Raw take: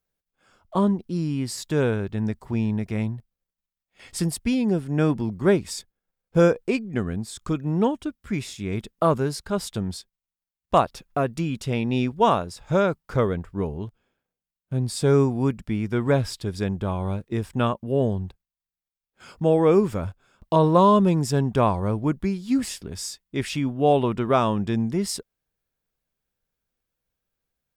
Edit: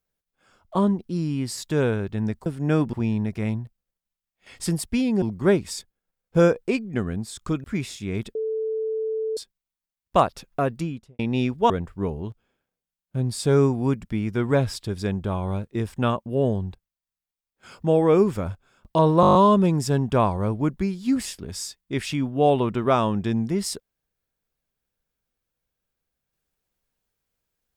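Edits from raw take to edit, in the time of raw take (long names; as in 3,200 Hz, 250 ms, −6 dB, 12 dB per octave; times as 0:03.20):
0:04.75–0:05.22: move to 0:02.46
0:07.64–0:08.22: remove
0:08.93–0:09.95: beep over 440 Hz −23.5 dBFS
0:11.29–0:11.77: fade out and dull
0:12.28–0:13.27: remove
0:20.78: stutter 0.02 s, 8 plays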